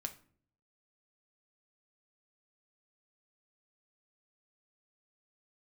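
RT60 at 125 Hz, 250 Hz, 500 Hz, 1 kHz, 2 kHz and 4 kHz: 0.85, 0.75, 0.60, 0.45, 0.40, 0.30 s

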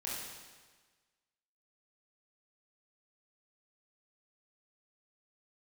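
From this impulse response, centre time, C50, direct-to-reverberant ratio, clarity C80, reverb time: 94 ms, -1.0 dB, -7.0 dB, 2.0 dB, 1.4 s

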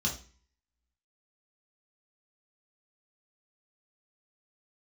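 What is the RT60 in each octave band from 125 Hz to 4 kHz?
0.50, 0.50, 0.40, 0.40, 0.45, 0.40 s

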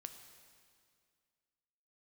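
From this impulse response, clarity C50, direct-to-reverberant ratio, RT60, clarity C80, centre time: 8.5 dB, 7.0 dB, 2.1 s, 9.5 dB, 27 ms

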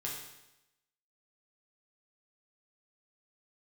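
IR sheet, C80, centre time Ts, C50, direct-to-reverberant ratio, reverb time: 5.5 dB, 51 ms, 3.0 dB, -4.0 dB, 0.90 s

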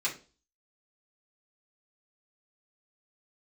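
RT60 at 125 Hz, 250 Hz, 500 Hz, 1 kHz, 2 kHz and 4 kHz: 0.40, 0.40, 0.40, 0.30, 0.30, 0.35 s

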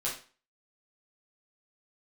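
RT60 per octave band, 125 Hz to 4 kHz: 0.35, 0.40, 0.35, 0.40, 0.35, 0.35 s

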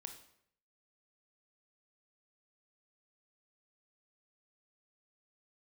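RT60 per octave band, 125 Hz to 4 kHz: 0.75, 0.70, 0.70, 0.65, 0.65, 0.55 s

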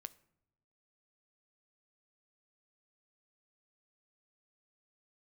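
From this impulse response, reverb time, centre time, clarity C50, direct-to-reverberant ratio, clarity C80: not exponential, 2 ms, 20.5 dB, 14.5 dB, 23.0 dB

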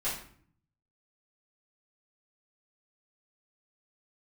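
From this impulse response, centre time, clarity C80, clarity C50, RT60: 38 ms, 8.5 dB, 4.5 dB, 0.55 s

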